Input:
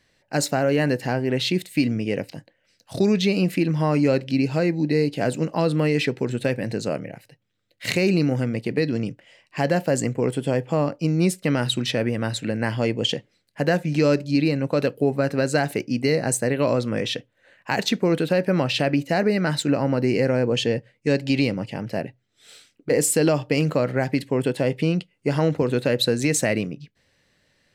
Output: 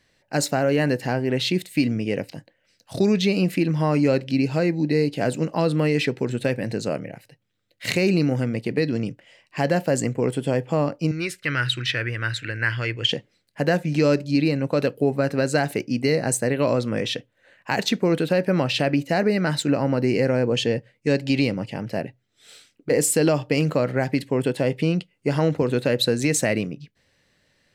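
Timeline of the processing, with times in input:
11.11–13.12 EQ curve 130 Hz 0 dB, 200 Hz -19 dB, 330 Hz -6 dB, 790 Hz -13 dB, 1500 Hz +9 dB, 5500 Hz -3 dB, 8200 Hz -7 dB

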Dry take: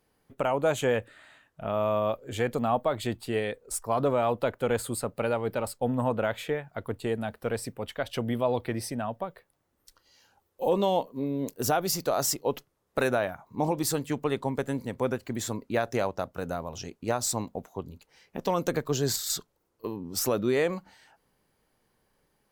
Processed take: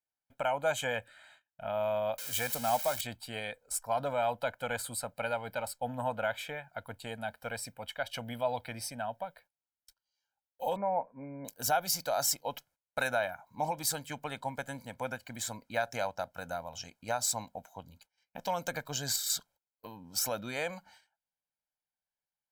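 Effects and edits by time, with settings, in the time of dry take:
2.18–3.01 switching spikes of -22.5 dBFS
10.76–11.45 Chebyshev low-pass 2400 Hz, order 10
whole clip: gate -55 dBFS, range -23 dB; low shelf 430 Hz -12 dB; comb 1.3 ms, depth 80%; gain -3.5 dB

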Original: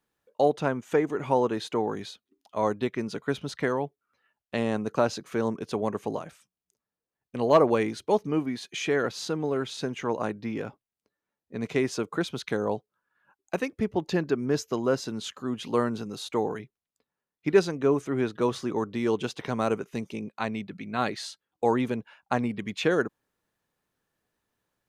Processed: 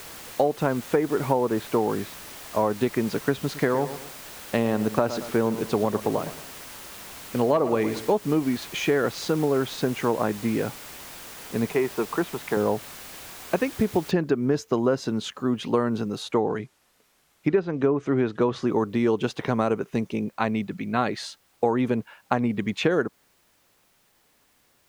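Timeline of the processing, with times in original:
1.21–2.72 LPF 2300 Hz
3.41–8.19 feedback echo 0.112 s, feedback 35%, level -14 dB
11.71–12.57 speaker cabinet 230–2700 Hz, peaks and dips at 270 Hz -8 dB, 550 Hz -8 dB, 920 Hz +5 dB, 1500 Hz -4 dB, 2100 Hz -3 dB
14.11 noise floor step -43 dB -66 dB
16.22–18.67 treble ducked by the level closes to 2400 Hz, closed at -17.5 dBFS
whole clip: high shelf 2800 Hz -8 dB; compressor 10:1, threshold -25 dBFS; gain +7.5 dB

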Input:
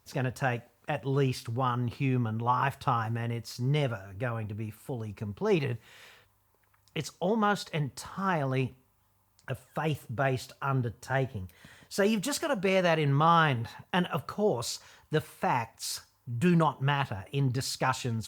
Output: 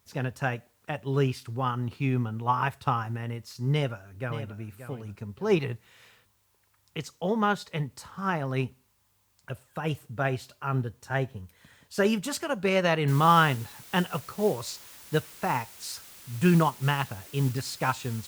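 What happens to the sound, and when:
3.72–4.57 echo throw 0.58 s, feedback 20%, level -9 dB
13.08 noise floor step -69 dB -46 dB
whole clip: bell 680 Hz -2.5 dB 0.77 oct; upward expander 1.5:1, over -36 dBFS; gain +4.5 dB

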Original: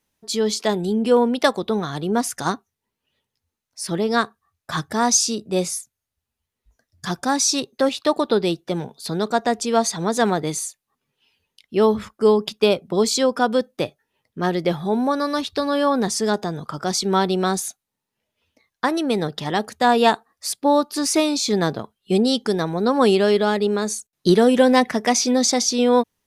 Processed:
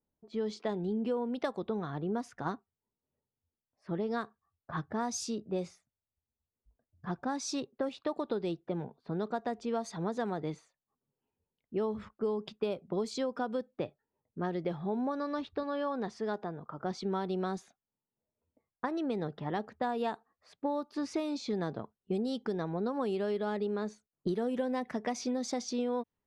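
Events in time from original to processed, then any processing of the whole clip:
15.63–16.8 low shelf 300 Hz -7.5 dB
whole clip: low-pass opened by the level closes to 850 Hz, open at -13.5 dBFS; high shelf 2500 Hz -11.5 dB; compressor, threshold -21 dBFS; gain -8.5 dB

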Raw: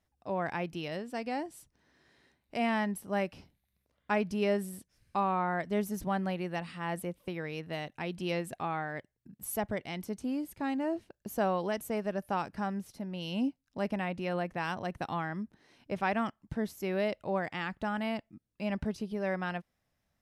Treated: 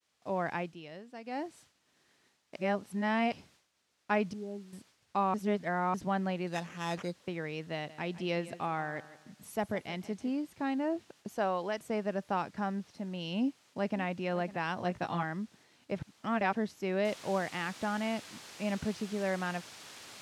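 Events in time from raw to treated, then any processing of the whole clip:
0.57–1.43 dip -9.5 dB, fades 0.19 s
2.56–3.32 reverse
4.33–4.73 vocal tract filter u
5.34–5.94 reverse
6.47–7.18 sample-rate reducer 4400 Hz
7.73–10.3 feedback echo 0.161 s, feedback 36%, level -16 dB
11.28–11.8 bell 150 Hz -6.5 dB 2.7 oct
12.31–12.91 median filter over 5 samples
13.41–14.03 echo throw 0.55 s, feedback 15%, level -16.5 dB
14.77–15.23 doubler 17 ms -3 dB
15.99–16.55 reverse
17.05 noise floor step -61 dB -45 dB
whole clip: LPF 6300 Hz 12 dB/oct; expander -57 dBFS; HPF 100 Hz

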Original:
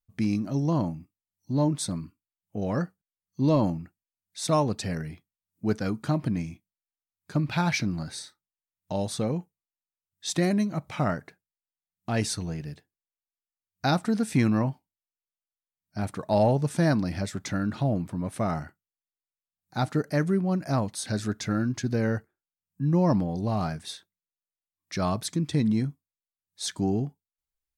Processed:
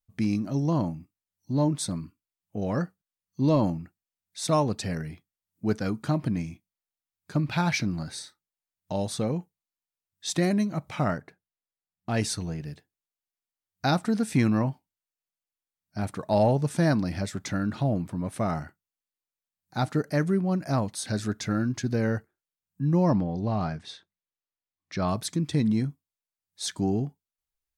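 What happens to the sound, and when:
11.18–12.63 mismatched tape noise reduction decoder only
23.1–25.09 air absorption 110 m

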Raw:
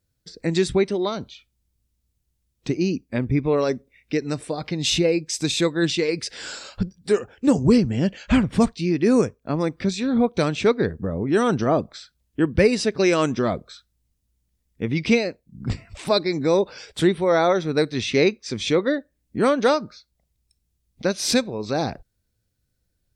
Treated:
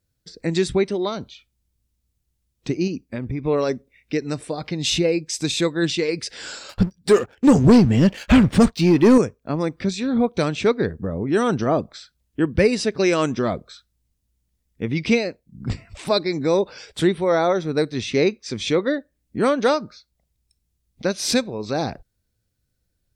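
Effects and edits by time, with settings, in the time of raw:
2.87–3.45 compressor 4:1, threshold -23 dBFS
6.69–9.18 sample leveller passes 2
17.35–18.31 bell 2700 Hz -3 dB 2.1 oct

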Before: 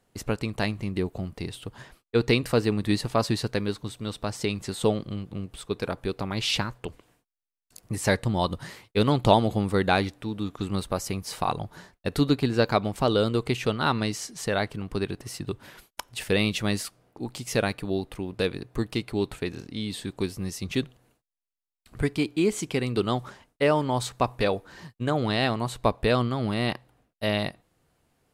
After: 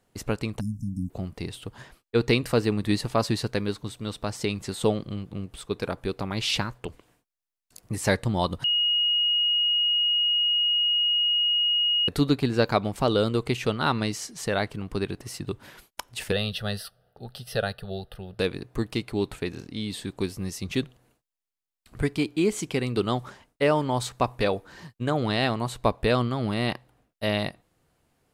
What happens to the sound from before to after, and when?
0.6–1.1 spectral delete 280–5100 Hz
8.64–12.08 bleep 2880 Hz -20 dBFS
16.32–18.39 fixed phaser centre 1500 Hz, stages 8

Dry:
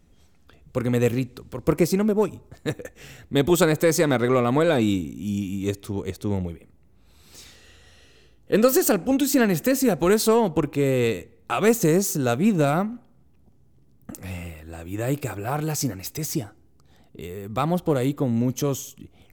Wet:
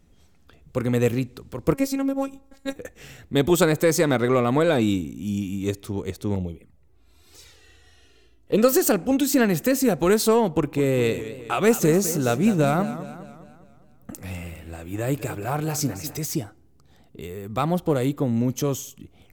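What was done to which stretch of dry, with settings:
1.74–2.76 robotiser 272 Hz
6.35–8.58 envelope flanger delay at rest 3.6 ms, full sweep at -28.5 dBFS
10.51–16.19 warbling echo 0.204 s, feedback 50%, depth 117 cents, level -13 dB

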